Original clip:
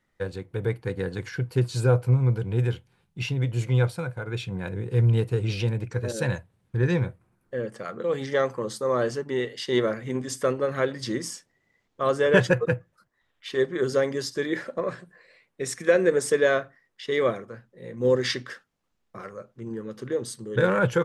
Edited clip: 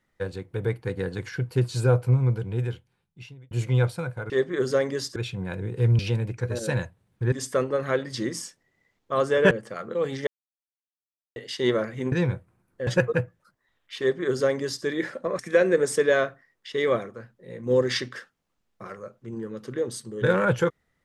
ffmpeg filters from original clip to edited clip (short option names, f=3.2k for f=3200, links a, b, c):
-filter_complex "[0:a]asplit=12[a][b][c][d][e][f][g][h][i][j][k][l];[a]atrim=end=3.51,asetpts=PTS-STARTPTS,afade=t=out:st=2.18:d=1.33[m];[b]atrim=start=3.51:end=4.302,asetpts=PTS-STARTPTS,afade=t=in:d=0.004:c=hsin[n];[c]atrim=start=13.518:end=14.382[o];[d]atrim=start=4.298:end=5.132[p];[e]atrim=start=5.518:end=6.852[q];[f]atrim=start=10.208:end=12.402[r];[g]atrim=start=7.598:end=8.36,asetpts=PTS-STARTPTS,afade=t=out:st=0.758:d=0.004:c=hsin[s];[h]atrim=start=8.36:end=9.45,asetpts=PTS-STARTPTS,volume=0[t];[i]atrim=start=9.45:end=10.212,asetpts=PTS-STARTPTS,afade=t=in:d=0.004:c=hsin[u];[j]atrim=start=6.848:end=7.602[v];[k]atrim=start=12.398:end=14.922[w];[l]atrim=start=15.728[x];[m][n]concat=n=2:v=0:a=1[y];[y][o]acrossfade=d=0.004:c1=hsin:c2=hsin[z];[z][p]acrossfade=d=0.004:c1=hsin:c2=hsin[aa];[aa][q]acrossfade=d=0.004:c1=hsin:c2=hsin[ab];[ab][r]acrossfade=d=0.004:c1=hsin:c2=hsin[ac];[s][t][u]concat=n=3:v=0:a=1[ad];[ac][ad]acrossfade=d=0.004:c1=hsin:c2=hsin[ae];[ae][v]acrossfade=d=0.004:c1=hsin:c2=hsin[af];[af][w]acrossfade=d=0.004:c1=hsin:c2=hsin[ag];[ag][x]acrossfade=d=0.004:c1=hsin:c2=hsin"